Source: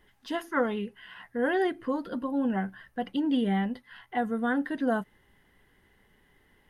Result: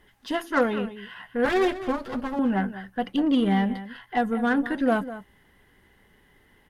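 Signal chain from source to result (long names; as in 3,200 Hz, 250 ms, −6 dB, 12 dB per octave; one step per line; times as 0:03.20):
0:01.45–0:02.39: lower of the sound and its delayed copy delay 8.2 ms
single-tap delay 199 ms −13.5 dB
harmonic generator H 8 −28 dB, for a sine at −13.5 dBFS
level +4.5 dB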